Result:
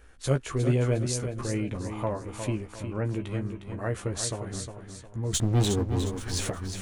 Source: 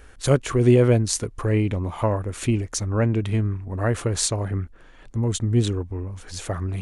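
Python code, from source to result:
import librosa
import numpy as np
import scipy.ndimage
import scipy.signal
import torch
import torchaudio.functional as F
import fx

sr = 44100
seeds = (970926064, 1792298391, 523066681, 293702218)

y = fx.air_absorb(x, sr, metres=330.0, at=(2.67, 3.12))
y = fx.leveller(y, sr, passes=3, at=(5.33, 6.5))
y = fx.doubler(y, sr, ms=15.0, db=-6)
y = fx.echo_feedback(y, sr, ms=358, feedback_pct=36, wet_db=-8.0)
y = y * 10.0 ** (-8.5 / 20.0)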